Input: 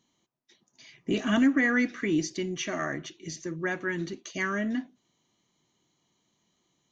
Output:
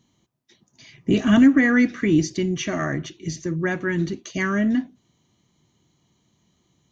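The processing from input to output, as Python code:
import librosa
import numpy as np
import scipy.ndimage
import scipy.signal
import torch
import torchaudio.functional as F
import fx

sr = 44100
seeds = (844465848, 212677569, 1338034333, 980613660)

y = fx.peak_eq(x, sr, hz=75.0, db=14.5, octaves=2.6)
y = y * librosa.db_to_amplitude(4.0)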